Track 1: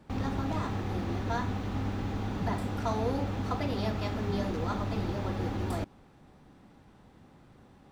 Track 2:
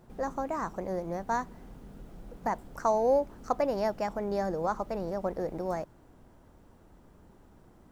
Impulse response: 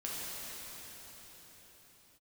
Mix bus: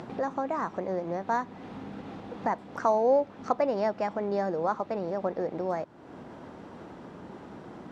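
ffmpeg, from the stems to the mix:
-filter_complex "[0:a]alimiter=limit=-24dB:level=0:latency=1:release=172,volume=-14dB[a];[1:a]volume=2dB[b];[a][b]amix=inputs=2:normalize=0,acompressor=mode=upward:threshold=-27dB:ratio=2.5,highpass=170,lowpass=4.2k"

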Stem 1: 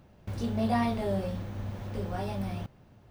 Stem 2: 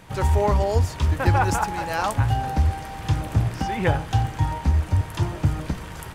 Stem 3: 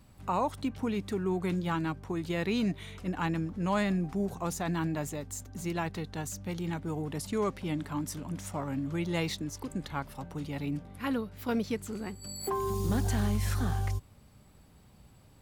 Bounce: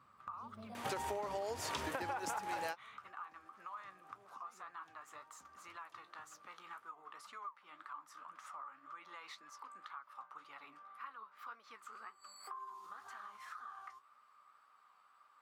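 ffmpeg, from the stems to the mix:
-filter_complex "[0:a]highpass=95,volume=-13dB,asplit=2[a][b];[1:a]highpass=380,acompressor=threshold=-31dB:ratio=6,adelay=750,volume=2.5dB[c];[2:a]lowpass=f=2k:p=1,alimiter=level_in=3.5dB:limit=-24dB:level=0:latency=1:release=75,volume=-3.5dB,highpass=f=1.2k:t=q:w=11,volume=-2dB[d];[b]apad=whole_len=303972[e];[c][e]sidechaingate=range=-36dB:threshold=-58dB:ratio=16:detection=peak[f];[a][d]amix=inputs=2:normalize=0,flanger=delay=7.7:depth=8.6:regen=49:speed=1.9:shape=sinusoidal,acompressor=threshold=-49dB:ratio=3,volume=0dB[g];[f][g]amix=inputs=2:normalize=0,acompressor=threshold=-37dB:ratio=6"

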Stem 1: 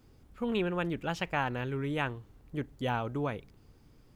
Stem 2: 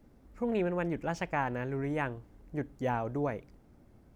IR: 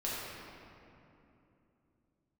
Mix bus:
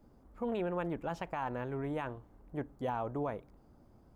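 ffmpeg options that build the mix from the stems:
-filter_complex "[0:a]volume=-17.5dB[a];[1:a]alimiter=limit=-24dB:level=0:latency=1:release=34,lowpass=f=1.1k:t=q:w=1.5,volume=-1,volume=-2.5dB[b];[a][b]amix=inputs=2:normalize=0,highshelf=f=3.4k:g=9"

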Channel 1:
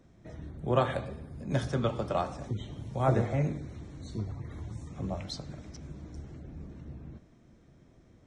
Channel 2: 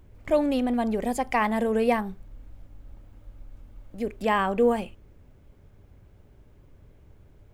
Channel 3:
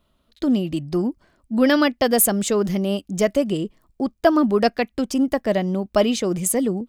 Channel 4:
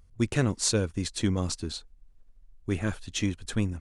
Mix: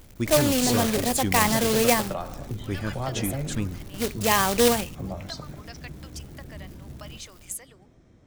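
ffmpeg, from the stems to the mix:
-filter_complex "[0:a]acompressor=threshold=-30dB:ratio=6,volume=2.5dB[a];[1:a]acrusher=bits=2:mode=log:mix=0:aa=0.000001,highshelf=f=3k:g=11.5,volume=0dB[b];[2:a]acompressor=threshold=-26dB:ratio=6,highpass=1.3k,adelay=1050,volume=-5dB[c];[3:a]volume=-1.5dB[d];[a][b][c][d]amix=inputs=4:normalize=0"

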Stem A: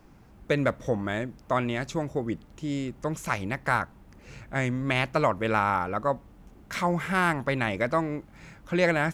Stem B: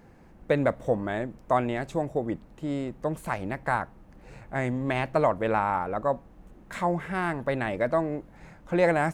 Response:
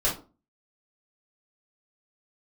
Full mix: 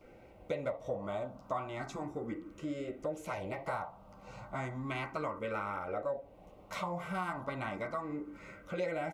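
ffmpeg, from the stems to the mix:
-filter_complex "[0:a]volume=-9dB[a];[1:a]acompressor=threshold=-30dB:ratio=3,bandpass=f=1.1k:t=q:w=0.57:csg=0,asplit=2[b][c];[c]afreqshift=0.34[d];[b][d]amix=inputs=2:normalize=1,adelay=11,volume=2.5dB,asplit=2[e][f];[f]volume=-11.5dB[g];[2:a]atrim=start_sample=2205[h];[g][h]afir=irnorm=-1:irlink=0[i];[a][e][i]amix=inputs=3:normalize=0,asuperstop=centerf=1700:order=20:qfactor=7.1,acompressor=threshold=-39dB:ratio=2"

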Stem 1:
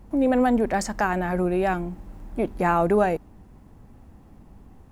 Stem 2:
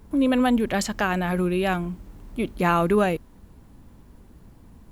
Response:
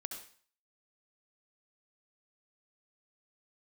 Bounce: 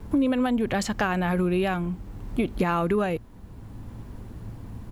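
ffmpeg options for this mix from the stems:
-filter_complex "[0:a]alimiter=limit=-18.5dB:level=0:latency=1,asplit=3[a][b][c];[a]bandpass=f=730:t=q:w=8,volume=0dB[d];[b]bandpass=f=1.09k:t=q:w=8,volume=-6dB[e];[c]bandpass=f=2.44k:t=q:w=8,volume=-9dB[f];[d][e][f]amix=inputs=3:normalize=0,volume=-3.5dB,asplit=2[g][h];[1:a]equalizer=f=110:w=5.9:g=11,acontrast=32,highshelf=f=5.4k:g=-5.5,adelay=3.5,volume=3dB[i];[h]apad=whole_len=217070[j];[i][j]sidechaincompress=threshold=-43dB:ratio=3:attack=16:release=977[k];[g][k]amix=inputs=2:normalize=0,acompressor=threshold=-20dB:ratio=6"

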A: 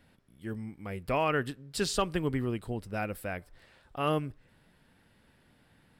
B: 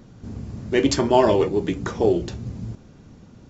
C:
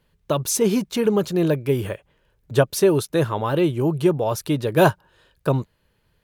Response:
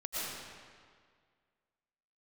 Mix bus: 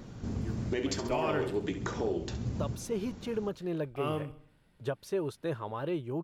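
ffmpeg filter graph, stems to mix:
-filter_complex "[0:a]bandreject=f=1.7k:w=12,volume=-6dB,asplit=3[a][b][c];[a]atrim=end=1.63,asetpts=PTS-STARTPTS,afade=t=out:st=1.626:d=0.004:c=hsin[d];[b]atrim=start=1.63:end=3.58,asetpts=PTS-STARTPTS,volume=0[e];[c]atrim=start=3.58,asetpts=PTS-STARTPTS,afade=t=in:d=0.004:c=hsin[f];[d][e][f]concat=n=3:v=0:a=1,asplit=2[g][h];[h]volume=-12.5dB[i];[1:a]acompressor=threshold=-30dB:ratio=2.5,volume=2dB,asplit=2[j][k];[k]volume=-15dB[l];[2:a]lowpass=f=2.9k:p=1,adelay=2300,volume=-12.5dB[m];[j][m]amix=inputs=2:normalize=0,lowshelf=f=210:g=-7,alimiter=limit=-22.5dB:level=0:latency=1:release=468,volume=0dB[n];[i][l]amix=inputs=2:normalize=0,aecho=0:1:67|134|201|268|335|402:1|0.46|0.212|0.0973|0.0448|0.0206[o];[g][n][o]amix=inputs=3:normalize=0,lowshelf=f=110:g=5.5"

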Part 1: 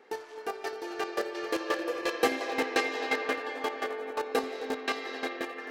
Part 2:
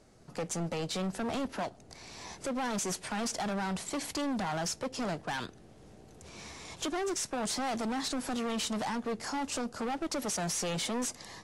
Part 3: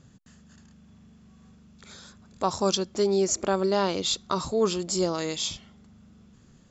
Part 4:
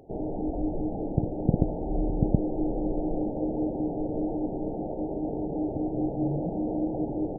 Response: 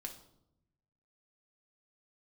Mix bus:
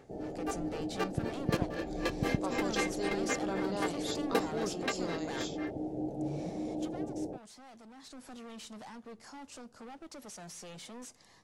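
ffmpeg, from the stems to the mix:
-filter_complex "[0:a]aeval=exprs='val(0)*pow(10,-31*(0.5-0.5*cos(2*PI*3.9*n/s))/20)':c=same,volume=-1dB[a];[1:a]volume=-3dB,afade=t=out:st=6.35:d=0.77:silence=0.251189,afade=t=in:st=7.94:d=0.3:silence=0.473151,asplit=2[b][c];[c]volume=-13.5dB[d];[2:a]volume=-14dB[e];[3:a]highpass=f=91:p=1,volume=-7.5dB[f];[4:a]atrim=start_sample=2205[g];[d][g]afir=irnorm=-1:irlink=0[h];[a][b][e][f][h]amix=inputs=5:normalize=0"

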